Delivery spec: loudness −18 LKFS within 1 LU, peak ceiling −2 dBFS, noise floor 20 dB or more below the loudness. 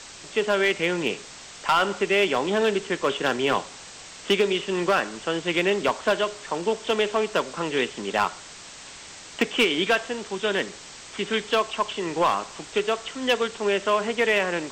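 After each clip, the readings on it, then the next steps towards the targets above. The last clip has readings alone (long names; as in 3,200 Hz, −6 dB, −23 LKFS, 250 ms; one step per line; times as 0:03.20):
share of clipped samples 0.4%; peaks flattened at −13.5 dBFS; background noise floor −43 dBFS; target noise floor −45 dBFS; integrated loudness −24.5 LKFS; sample peak −13.5 dBFS; target loudness −18.0 LKFS
→ clipped peaks rebuilt −13.5 dBFS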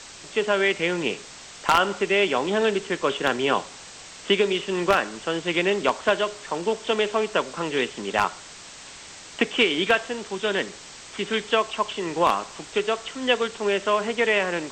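share of clipped samples 0.0%; background noise floor −43 dBFS; target noise floor −44 dBFS
→ broadband denoise 6 dB, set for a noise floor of −43 dBFS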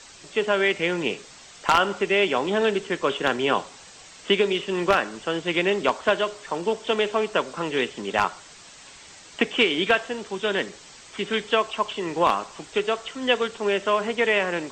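background noise floor −47 dBFS; integrated loudness −24.0 LKFS; sample peak −4.5 dBFS; target loudness −18.0 LKFS
→ level +6 dB
brickwall limiter −2 dBFS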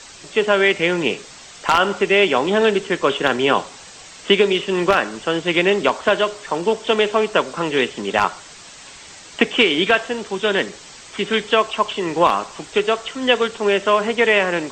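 integrated loudness −18.5 LKFS; sample peak −2.0 dBFS; background noise floor −41 dBFS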